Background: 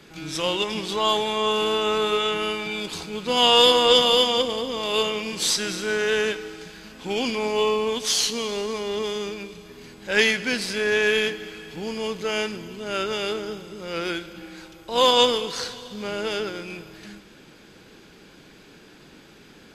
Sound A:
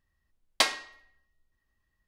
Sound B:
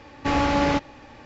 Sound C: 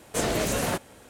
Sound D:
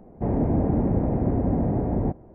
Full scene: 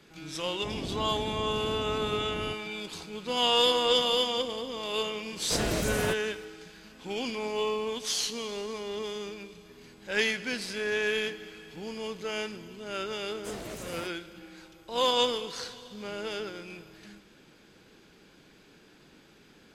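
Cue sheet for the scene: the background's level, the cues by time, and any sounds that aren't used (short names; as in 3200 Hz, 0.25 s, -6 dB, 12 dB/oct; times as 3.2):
background -8 dB
0.42 add D -15 dB
5.36 add C -5 dB + low shelf 130 Hz +7.5 dB
13.3 add C -14.5 dB
not used: A, B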